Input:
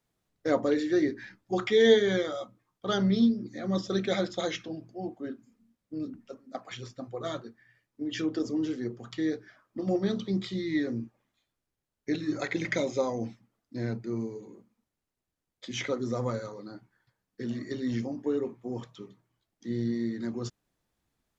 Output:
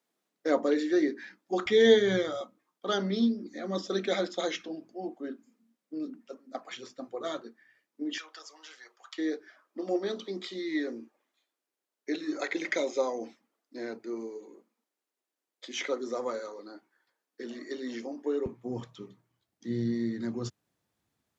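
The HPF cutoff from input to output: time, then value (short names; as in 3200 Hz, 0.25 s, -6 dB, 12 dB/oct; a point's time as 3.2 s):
HPF 24 dB/oct
230 Hz
from 1.66 s 56 Hz
from 2.41 s 230 Hz
from 8.18 s 870 Hz
from 9.18 s 300 Hz
from 18.46 s 76 Hz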